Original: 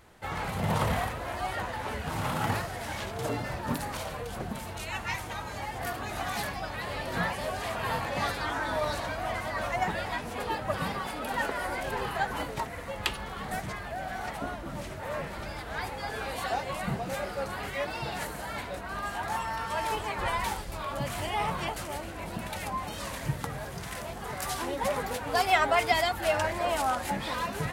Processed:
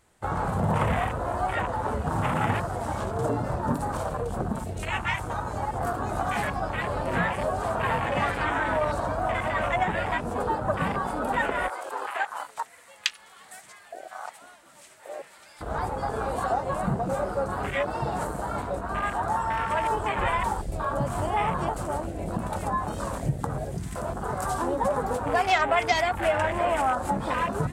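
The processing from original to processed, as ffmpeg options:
ffmpeg -i in.wav -filter_complex "[0:a]asettb=1/sr,asplit=3[link_01][link_02][link_03];[link_01]atrim=end=11.684[link_04];[link_02]atrim=start=11.68:end=15.61,asetpts=PTS-STARTPTS,afade=type=in:duration=0.004:curve=qsin,afade=type=out:start_time=3.926:duration=0.004:curve=qsin,highpass=frequency=1400:poles=1[link_05];[link_03]atrim=start=15.606[link_06];[link_04][link_05]acrossfade=duration=0.004:curve1=hsin:curve2=qsin[link_07];[link_07][link_06]acrossfade=duration=0.004:curve1=qsin:curve2=hsin,afwtdn=0.02,equalizer=frequency=8200:width=1.7:gain=11,acompressor=threshold=-33dB:ratio=2,volume=8.5dB" out.wav

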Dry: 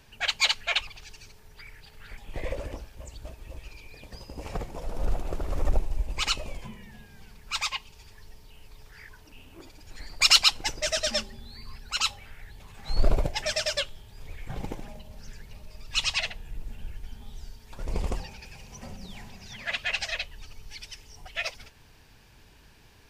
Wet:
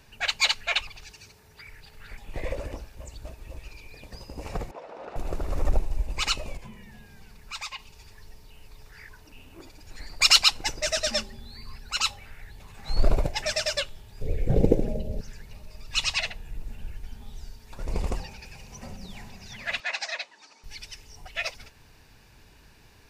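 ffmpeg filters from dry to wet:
ffmpeg -i in.wav -filter_complex "[0:a]asettb=1/sr,asplit=3[link_01][link_02][link_03];[link_01]atrim=end=1.104[link_04];[link_02]atrim=start=1.1:end=1.69,asetpts=PTS-STARTPTS,afade=type=in:duration=0.004:curve=qsin,afade=type=out:start_time=0.586:duration=0.004:curve=qsin,highpass=66[link_05];[link_03]atrim=start=1.686[link_06];[link_04][link_05]acrossfade=duration=0.004:curve1=hsin:curve2=qsin[link_07];[link_07][link_06]acrossfade=duration=0.004:curve1=qsin:curve2=hsin,asettb=1/sr,asplit=3[link_08][link_09][link_10];[link_08]atrim=end=4.714[link_11];[link_09]atrim=start=4.71:end=5.16,asetpts=PTS-STARTPTS,afade=type=in:duration=0.004:curve=qsin,afade=type=out:start_time=0.446:duration=0.004:curve=qsin,highpass=460,lowpass=2900[link_12];[link_10]atrim=start=5.156[link_13];[link_11][link_12]acrossfade=duration=0.004:curve1=hsin:curve2=qsin[link_14];[link_14][link_13]acrossfade=duration=0.004:curve1=qsin:curve2=hsin,asettb=1/sr,asplit=3[link_15][link_16][link_17];[link_15]atrim=end=6.574[link_18];[link_16]atrim=start=6.57:end=7.79,asetpts=PTS-STARTPTS,afade=type=in:duration=0.004:curve=qsin,afade=type=out:start_time=1.216:duration=0.004:curve=qsin,acompressor=threshold=-45dB:ratio=1.5:attack=3.2:release=140:knee=1:detection=peak[link_19];[link_17]atrim=start=7.786[link_20];[link_18][link_19]acrossfade=duration=0.004:curve1=hsin:curve2=qsin[link_21];[link_21][link_20]acrossfade=duration=0.004:curve1=qsin:curve2=hsin,asettb=1/sr,asplit=3[link_22][link_23][link_24];[link_22]atrim=end=14.214[link_25];[link_23]atrim=start=14.21:end=15.21,asetpts=PTS-STARTPTS,afade=type=in:duration=0.004:curve=qsin,afade=type=out:start_time=0.996:duration=0.004:curve=qsin,lowshelf=frequency=710:width_type=q:width=3:gain=12.5[link_26];[link_24]atrim=start=15.206[link_27];[link_25][link_26]acrossfade=duration=0.004:curve1=hsin:curve2=qsin[link_28];[link_28][link_27]acrossfade=duration=0.004:curve1=qsin:curve2=hsin,asettb=1/sr,asplit=3[link_29][link_30][link_31];[link_29]atrim=end=19.804[link_32];[link_30]atrim=start=19.8:end=20.64,asetpts=PTS-STARTPTS,afade=type=in:duration=0.004:curve=qsin,afade=type=out:start_time=0.836:duration=0.004:curve=qsin,highpass=frequency=290:width=0.5412,highpass=frequency=290:width=1.3066,equalizer=frequency=430:width_type=q:width=4:gain=-7,equalizer=frequency=930:width_type=q:width=4:gain=5,equalizer=frequency=2900:width_type=q:width=4:gain=-8,lowpass=frequency=7700:width=0.5412,lowpass=frequency=7700:width=1.3066[link_33];[link_31]atrim=start=20.636[link_34];[link_32][link_33]acrossfade=duration=0.004:curve1=hsin:curve2=qsin[link_35];[link_35][link_34]acrossfade=duration=0.004:curve1=qsin:curve2=hsin,bandreject=frequency=3200:width=13,volume=1dB" out.wav

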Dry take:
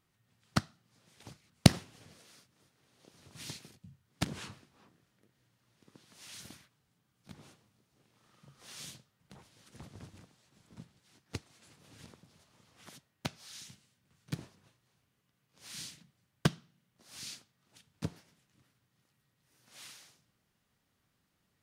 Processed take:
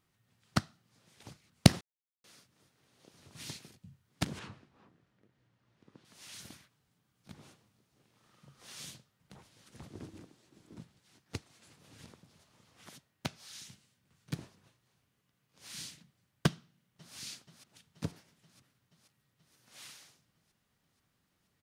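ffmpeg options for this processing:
ffmpeg -i in.wav -filter_complex "[0:a]asettb=1/sr,asplit=3[link_01][link_02][link_03];[link_01]atrim=end=4.394[link_04];[link_02]atrim=start=4.39:end=6.05,asetpts=PTS-STARTPTS,afade=type=in:duration=0.004:curve=qsin,afade=type=out:start_time=1.656:duration=0.004:curve=qsin,aemphasis=mode=reproduction:type=75fm[link_05];[link_03]atrim=start=6.046[link_06];[link_04][link_05]acrossfade=duration=0.004:curve1=hsin:curve2=qsin[link_07];[link_07][link_06]acrossfade=duration=0.004:curve1=qsin:curve2=hsin,asettb=1/sr,asplit=3[link_08][link_09][link_10];[link_08]atrim=end=9.904[link_11];[link_09]atrim=start=9.9:end=10.79,asetpts=PTS-STARTPTS,afade=type=in:duration=0.004:curve=qsin,afade=type=out:start_time=0.886:duration=0.004:curve=qsin,equalizer=frequency=330:width=1.6:gain=12[link_12];[link_10]atrim=start=10.786[link_13];[link_11][link_12]acrossfade=duration=0.004:curve1=hsin:curve2=qsin[link_14];[link_14][link_13]acrossfade=duration=0.004:curve1=qsin:curve2=hsin,asplit=2[link_15][link_16];[link_16]afade=type=in:start_time=16.51:duration=0.01,afade=type=out:start_time=17.15:duration=0.01,aecho=0:1:480|960|1440|1920|2400|2880|3360|3840|4320|4800|5280|5760:0.562341|0.393639|0.275547|0.192883|0.135018|0.0945127|0.0661589|0.0463112|0.0324179|0.0226925|0.0158848|0.0111193[link_17];[link_15][link_17]amix=inputs=2:normalize=0,asplit=3[link_18][link_19][link_20];[link_18]atrim=end=1.81,asetpts=PTS-STARTPTS,afade=type=out:start_time=1.806:duration=0.004:curve=hsin[link_21];[link_19]atrim=start=1.81:end=2.24,asetpts=PTS-STARTPTS,volume=0[link_22];[link_20]atrim=start=2.24,asetpts=PTS-STARTPTS,afade=type=in:duration=0.004:curve=hsin[link_23];[link_21][link_22][link_23]concat=n=3:v=0:a=1" out.wav

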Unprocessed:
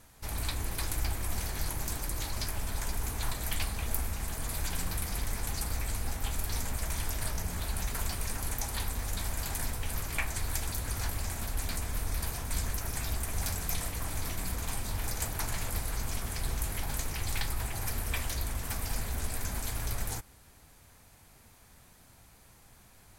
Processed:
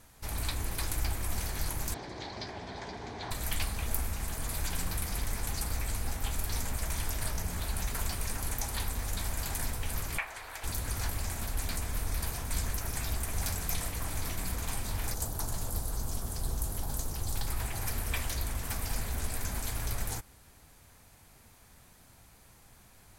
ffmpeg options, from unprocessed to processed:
ffmpeg -i in.wav -filter_complex "[0:a]asettb=1/sr,asplit=3[link_01][link_02][link_03];[link_01]atrim=end=1.944[link_04];[link_02]atrim=start=1.94:end=3.31,asetpts=PTS-STARTPTS,afade=type=in:duration=0.004:curve=qsin,afade=type=out:start_time=1.366:duration=0.004:curve=qsin,highpass=140,equalizer=frequency=390:width_type=q:width=4:gain=6,equalizer=frequency=730:width_type=q:width=4:gain=5,equalizer=frequency=1300:width_type=q:width=4:gain=-7,equalizer=frequency=2700:width_type=q:width=4:gain=-7,lowpass=frequency=4600:width=0.5412,lowpass=frequency=4600:width=1.3066[link_05];[link_03]atrim=start=3.306[link_06];[link_04][link_05]acrossfade=duration=0.004:curve1=hsin:curve2=qsin[link_07];[link_07][link_06]acrossfade=duration=0.004:curve1=qsin:curve2=hsin,asettb=1/sr,asplit=3[link_08][link_09][link_10];[link_08]atrim=end=10.184[link_11];[link_09]atrim=start=10.18:end=10.64,asetpts=PTS-STARTPTS,afade=type=in:duration=0.004:curve=qsin,afade=type=out:start_time=0.456:duration=0.004:curve=qsin,acrossover=split=470 3400:gain=0.0891 1 0.224[link_12][link_13][link_14];[link_12][link_13][link_14]amix=inputs=3:normalize=0[link_15];[link_10]atrim=start=10.636[link_16];[link_11][link_15]acrossfade=duration=0.004:curve1=hsin:curve2=qsin[link_17];[link_17][link_16]acrossfade=duration=0.004:curve1=qsin:curve2=hsin,asettb=1/sr,asplit=3[link_18][link_19][link_20];[link_18]atrim=end=15.144[link_21];[link_19]atrim=start=15.14:end=17.47,asetpts=PTS-STARTPTS,afade=type=in:duration=0.004:curve=qsin,afade=type=out:start_time=2.326:duration=0.004:curve=qsin,equalizer=frequency=2200:width_type=o:width=1.1:gain=-14.5[link_22];[link_20]atrim=start=17.466[link_23];[link_21][link_22]acrossfade=duration=0.004:curve1=hsin:curve2=qsin[link_24];[link_24][link_23]acrossfade=duration=0.004:curve1=qsin:curve2=hsin" out.wav

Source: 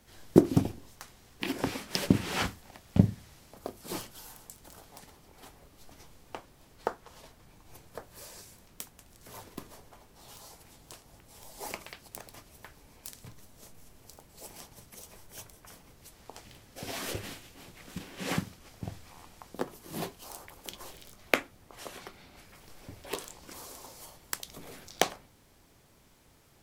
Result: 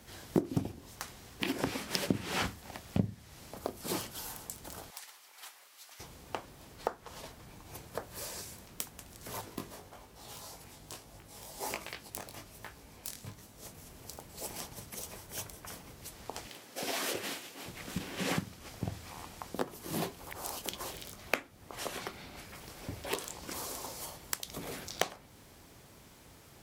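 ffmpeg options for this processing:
ffmpeg -i in.wav -filter_complex "[0:a]asettb=1/sr,asplit=3[link_01][link_02][link_03];[link_01]atrim=end=4.904[link_04];[link_02]atrim=start=4.9:end=6,asetpts=PTS-STARTPTS,afade=type=in:duration=0.004:curve=qsin,afade=type=out:start_time=1.096:duration=0.004:curve=qsin,highpass=1300[link_05];[link_03]atrim=start=5.996[link_06];[link_04][link_05]acrossfade=duration=0.004:curve1=hsin:curve2=qsin[link_07];[link_07][link_06]acrossfade=duration=0.004:curve1=qsin:curve2=hsin,asettb=1/sr,asplit=3[link_08][link_09][link_10];[link_08]atrim=end=9.414[link_11];[link_09]atrim=start=9.41:end=13.65,asetpts=PTS-STARTPTS,afade=type=in:duration=0.004:curve=qsin,afade=type=out:start_time=4.236:duration=0.004:curve=qsin,flanger=delay=18:depth=3.4:speed=1.2[link_12];[link_10]atrim=start=13.646[link_13];[link_11][link_12]acrossfade=duration=0.004:curve1=hsin:curve2=qsin[link_14];[link_14][link_13]acrossfade=duration=0.004:curve1=qsin:curve2=hsin,asettb=1/sr,asplit=3[link_15][link_16][link_17];[link_15]atrim=end=16.464[link_18];[link_16]atrim=start=16.46:end=17.66,asetpts=PTS-STARTPTS,afade=type=in:duration=0.004:curve=qsin,afade=type=out:start_time=1.196:duration=0.004:curve=qsin,highpass=270[link_19];[link_17]atrim=start=17.656[link_20];[link_18][link_19]acrossfade=duration=0.004:curve1=hsin:curve2=qsin[link_21];[link_21][link_20]acrossfade=duration=0.004:curve1=qsin:curve2=hsin,asplit=3[link_22][link_23][link_24];[link_22]atrim=end=20.182[link_25];[link_23]atrim=start=20.178:end=20.632,asetpts=PTS-STARTPTS,areverse[link_26];[link_24]atrim=start=20.628[link_27];[link_25][link_26]acrossfade=duration=0.004:curve1=hsin:curve2=hsin[link_28];[link_28][link_27]acrossfade=duration=0.004:curve1=hsin:curve2=hsin,highpass=41,acompressor=threshold=-39dB:ratio=2.5,volume=6dB" out.wav

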